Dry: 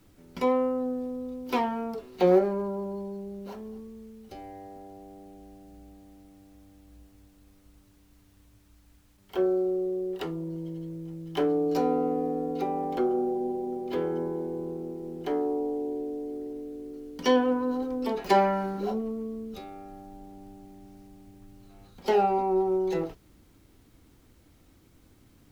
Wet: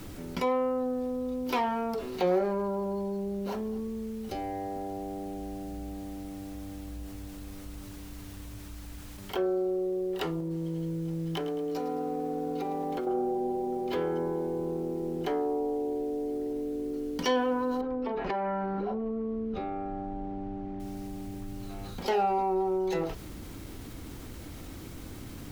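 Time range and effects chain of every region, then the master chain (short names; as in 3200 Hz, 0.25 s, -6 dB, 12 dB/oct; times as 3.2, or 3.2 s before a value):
10.4–13.07 compressor, threshold -35 dBFS + lo-fi delay 0.109 s, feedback 55%, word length 9-bit, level -12.5 dB
17.81–20.8 LPF 2000 Hz + compressor, threshold -31 dBFS
whole clip: dynamic EQ 270 Hz, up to -6 dB, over -38 dBFS, Q 0.71; fast leveller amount 50%; gain -2.5 dB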